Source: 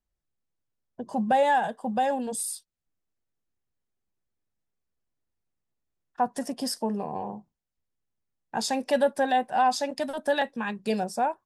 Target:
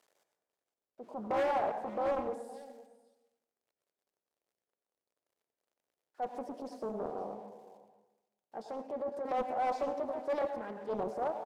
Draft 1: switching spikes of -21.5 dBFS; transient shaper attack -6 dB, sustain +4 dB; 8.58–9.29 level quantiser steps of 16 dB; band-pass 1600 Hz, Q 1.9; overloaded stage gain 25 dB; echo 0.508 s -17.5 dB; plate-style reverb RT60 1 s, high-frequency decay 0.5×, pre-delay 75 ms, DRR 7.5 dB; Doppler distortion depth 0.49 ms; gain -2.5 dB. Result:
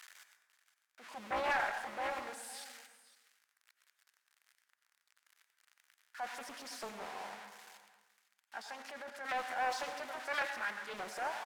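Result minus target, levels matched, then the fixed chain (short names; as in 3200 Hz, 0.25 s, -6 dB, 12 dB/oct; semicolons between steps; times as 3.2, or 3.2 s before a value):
2000 Hz band +13.5 dB; switching spikes: distortion +9 dB
switching spikes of -30.5 dBFS; transient shaper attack -6 dB, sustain +4 dB; 8.58–9.29 level quantiser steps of 16 dB; band-pass 510 Hz, Q 1.9; overloaded stage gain 25 dB; echo 0.508 s -17.5 dB; plate-style reverb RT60 1 s, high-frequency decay 0.5×, pre-delay 75 ms, DRR 7.5 dB; Doppler distortion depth 0.49 ms; gain -2.5 dB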